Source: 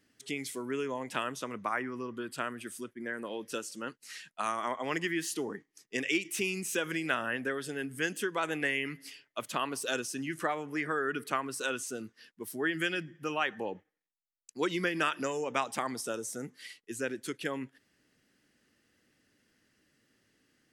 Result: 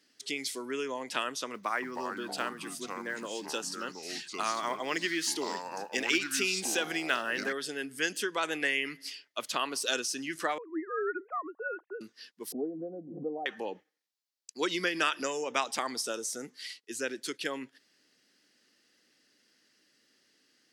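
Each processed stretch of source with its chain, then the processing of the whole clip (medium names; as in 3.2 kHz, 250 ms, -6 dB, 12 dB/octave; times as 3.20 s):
1.54–7.53 s: block-companded coder 7-bit + ever faster or slower copies 282 ms, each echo -4 st, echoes 2, each echo -6 dB
10.58–12.01 s: formants replaced by sine waves + low-pass 1.3 kHz 24 dB/octave
12.52–13.46 s: Chebyshev low-pass 720 Hz, order 5 + comb 4.1 ms, depth 53% + swell ahead of each attack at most 60 dB/s
whole clip: high-pass 250 Hz 12 dB/octave; peaking EQ 4.7 kHz +10 dB 1.1 oct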